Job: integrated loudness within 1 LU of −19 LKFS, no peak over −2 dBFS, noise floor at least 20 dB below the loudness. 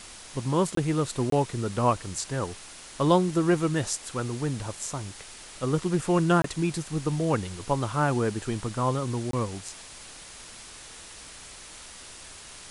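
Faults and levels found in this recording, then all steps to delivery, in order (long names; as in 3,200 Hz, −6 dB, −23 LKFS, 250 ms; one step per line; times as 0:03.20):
number of dropouts 4; longest dropout 23 ms; background noise floor −45 dBFS; target noise floor −48 dBFS; integrated loudness −27.5 LKFS; sample peak −9.0 dBFS; target loudness −19.0 LKFS
→ repair the gap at 0:00.75/0:01.30/0:06.42/0:09.31, 23 ms
broadband denoise 6 dB, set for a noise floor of −45 dBFS
level +8.5 dB
brickwall limiter −2 dBFS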